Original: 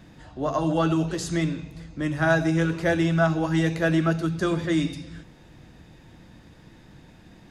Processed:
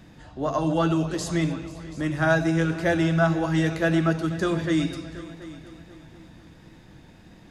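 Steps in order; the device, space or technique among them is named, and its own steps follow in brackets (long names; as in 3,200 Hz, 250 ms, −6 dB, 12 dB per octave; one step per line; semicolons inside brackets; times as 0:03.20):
multi-head tape echo (echo machine with several playback heads 244 ms, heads all three, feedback 42%, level −20.5 dB; tape wow and flutter 23 cents)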